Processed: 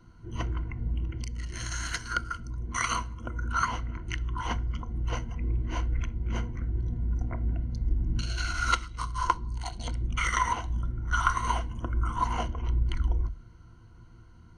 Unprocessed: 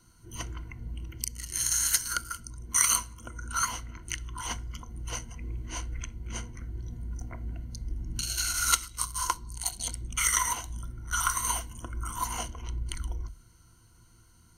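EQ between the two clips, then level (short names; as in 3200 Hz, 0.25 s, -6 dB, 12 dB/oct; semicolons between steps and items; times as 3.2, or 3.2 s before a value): tape spacing loss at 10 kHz 32 dB; +8.0 dB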